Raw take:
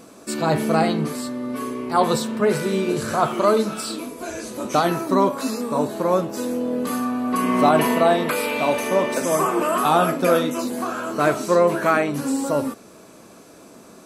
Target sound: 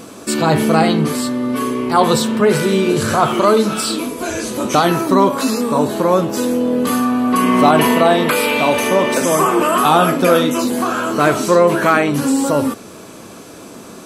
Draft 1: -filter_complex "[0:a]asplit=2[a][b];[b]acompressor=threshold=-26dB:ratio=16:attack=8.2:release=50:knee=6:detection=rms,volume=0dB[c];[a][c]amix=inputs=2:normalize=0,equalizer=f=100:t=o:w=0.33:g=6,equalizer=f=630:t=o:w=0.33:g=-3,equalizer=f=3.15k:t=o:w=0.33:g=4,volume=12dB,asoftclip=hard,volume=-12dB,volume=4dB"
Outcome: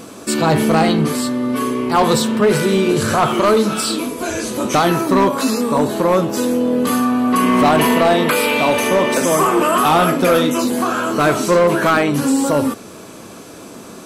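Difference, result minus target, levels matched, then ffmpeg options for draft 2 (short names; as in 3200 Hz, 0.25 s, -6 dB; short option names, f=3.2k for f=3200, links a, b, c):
overloaded stage: distortion +26 dB
-filter_complex "[0:a]asplit=2[a][b];[b]acompressor=threshold=-26dB:ratio=16:attack=8.2:release=50:knee=6:detection=rms,volume=0dB[c];[a][c]amix=inputs=2:normalize=0,equalizer=f=100:t=o:w=0.33:g=6,equalizer=f=630:t=o:w=0.33:g=-3,equalizer=f=3.15k:t=o:w=0.33:g=4,volume=5.5dB,asoftclip=hard,volume=-5.5dB,volume=4dB"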